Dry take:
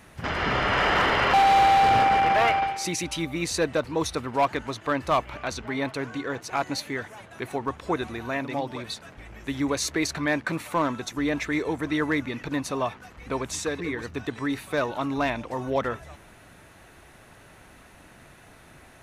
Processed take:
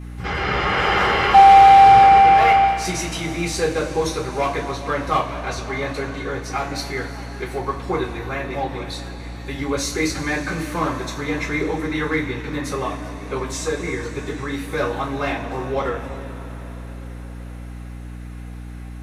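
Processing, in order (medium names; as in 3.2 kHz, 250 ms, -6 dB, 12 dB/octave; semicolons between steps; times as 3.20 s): two-slope reverb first 0.28 s, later 5 s, from -20 dB, DRR -9.5 dB; hum 60 Hz, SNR 14 dB; trim -6 dB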